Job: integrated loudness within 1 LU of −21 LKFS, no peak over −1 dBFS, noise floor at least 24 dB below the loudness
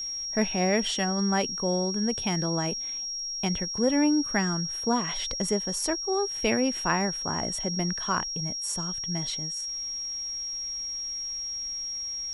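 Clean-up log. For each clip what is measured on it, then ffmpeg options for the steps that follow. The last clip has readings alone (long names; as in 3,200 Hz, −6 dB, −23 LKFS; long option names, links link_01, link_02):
interfering tone 5,600 Hz; level of the tone −31 dBFS; integrated loudness −27.5 LKFS; sample peak −10.5 dBFS; target loudness −21.0 LKFS
→ -af "bandreject=frequency=5600:width=30"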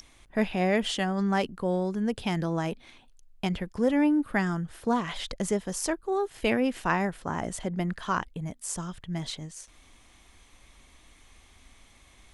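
interfering tone none found; integrated loudness −29.0 LKFS; sample peak −11.5 dBFS; target loudness −21.0 LKFS
→ -af "volume=8dB"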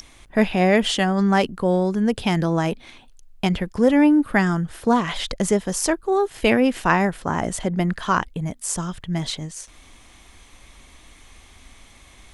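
integrated loudness −21.0 LKFS; sample peak −3.5 dBFS; background noise floor −50 dBFS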